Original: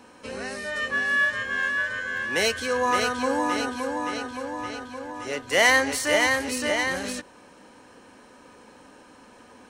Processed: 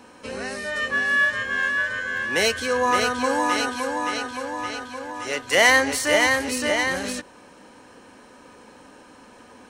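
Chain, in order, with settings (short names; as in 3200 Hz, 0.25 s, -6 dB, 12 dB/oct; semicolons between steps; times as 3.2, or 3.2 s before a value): 3.24–5.55 tilt shelf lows -3.5 dB, about 660 Hz; gain +2.5 dB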